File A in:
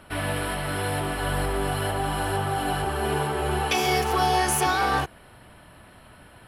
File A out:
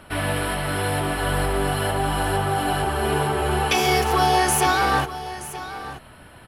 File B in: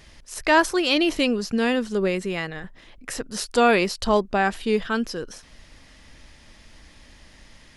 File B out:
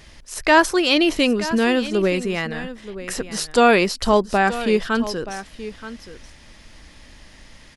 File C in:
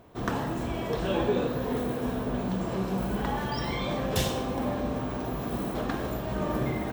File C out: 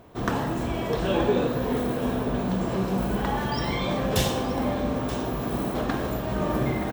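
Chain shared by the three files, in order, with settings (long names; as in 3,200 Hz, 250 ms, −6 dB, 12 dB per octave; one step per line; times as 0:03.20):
single-tap delay 927 ms −14 dB
level +3.5 dB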